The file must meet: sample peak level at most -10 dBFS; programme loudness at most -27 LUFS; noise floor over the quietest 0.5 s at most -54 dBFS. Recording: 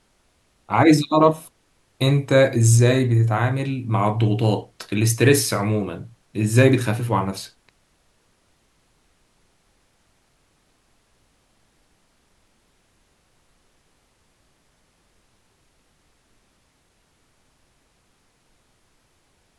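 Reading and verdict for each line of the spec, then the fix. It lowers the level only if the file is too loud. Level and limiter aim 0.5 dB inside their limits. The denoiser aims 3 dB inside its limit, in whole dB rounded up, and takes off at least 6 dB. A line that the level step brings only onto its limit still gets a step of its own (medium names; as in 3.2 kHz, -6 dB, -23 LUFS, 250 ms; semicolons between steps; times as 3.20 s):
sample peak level -2.5 dBFS: fail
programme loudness -19.5 LUFS: fail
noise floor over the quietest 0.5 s -64 dBFS: pass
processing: trim -8 dB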